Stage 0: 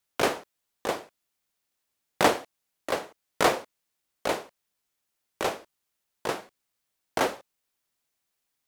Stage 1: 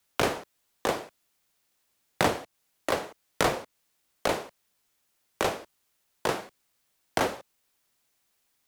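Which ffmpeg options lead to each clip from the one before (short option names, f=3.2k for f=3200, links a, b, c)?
-filter_complex "[0:a]acrossover=split=160[a][b];[b]acompressor=threshold=-32dB:ratio=3[c];[a][c]amix=inputs=2:normalize=0,volume=7dB"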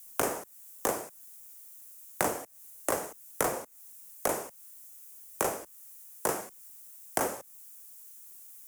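-filter_complex "[0:a]aexciter=amount=7.4:drive=8.6:freq=5.9k,acrusher=bits=4:mode=log:mix=0:aa=0.000001,acrossover=split=210|2000[a][b][c];[a]acompressor=threshold=-47dB:ratio=4[d];[b]acompressor=threshold=-26dB:ratio=4[e];[c]acompressor=threshold=-35dB:ratio=4[f];[d][e][f]amix=inputs=3:normalize=0"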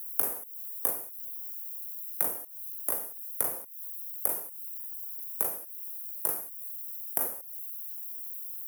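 -af "aexciter=amount=8.7:drive=6:freq=10k,volume=-10.5dB"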